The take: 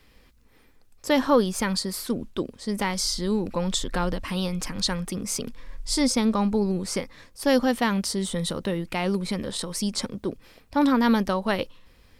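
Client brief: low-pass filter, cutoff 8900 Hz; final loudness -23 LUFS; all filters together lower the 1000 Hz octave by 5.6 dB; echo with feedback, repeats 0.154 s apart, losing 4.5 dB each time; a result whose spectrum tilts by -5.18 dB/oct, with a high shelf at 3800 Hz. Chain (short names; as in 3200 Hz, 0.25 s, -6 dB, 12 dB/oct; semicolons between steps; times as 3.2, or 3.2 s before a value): LPF 8900 Hz; bell 1000 Hz -6.5 dB; high shelf 3800 Hz -5.5 dB; feedback echo 0.154 s, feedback 60%, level -4.5 dB; gain +2.5 dB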